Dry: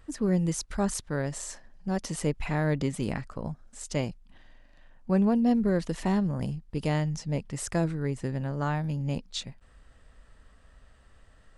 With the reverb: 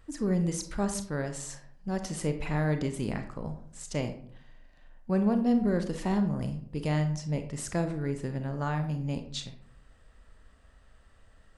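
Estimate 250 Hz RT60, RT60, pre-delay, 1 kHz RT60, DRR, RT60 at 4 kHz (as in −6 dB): 0.65 s, 0.60 s, 29 ms, 0.55 s, 7.0 dB, 0.35 s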